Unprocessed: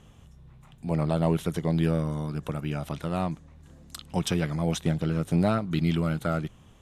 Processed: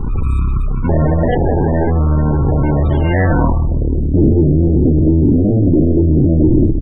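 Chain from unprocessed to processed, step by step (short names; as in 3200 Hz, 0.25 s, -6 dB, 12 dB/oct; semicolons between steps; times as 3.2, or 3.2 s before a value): spectral trails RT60 0.67 s; tilt -4 dB/oct; notches 50/100 Hz; comb 2.8 ms, depth 72%; transient shaper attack +1 dB, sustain +6 dB; sine folder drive 11 dB, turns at -4.5 dBFS; transient shaper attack -3 dB, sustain +12 dB; sample-and-hold 36×; soft clip -6 dBFS, distortion -18 dB; vocal rider within 3 dB 0.5 s; low-pass sweep 9000 Hz -> 310 Hz, 2.56–4.02; loudest bins only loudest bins 32; gain -1.5 dB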